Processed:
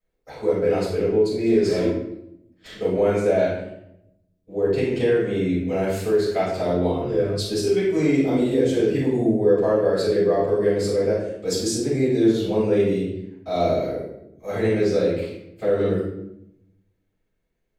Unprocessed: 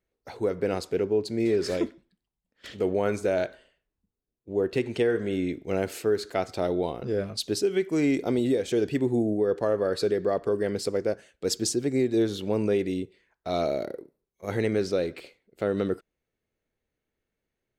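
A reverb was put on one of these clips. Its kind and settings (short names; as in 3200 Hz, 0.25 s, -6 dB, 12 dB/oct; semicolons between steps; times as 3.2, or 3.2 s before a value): shoebox room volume 220 m³, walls mixed, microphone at 6.3 m; gain -11.5 dB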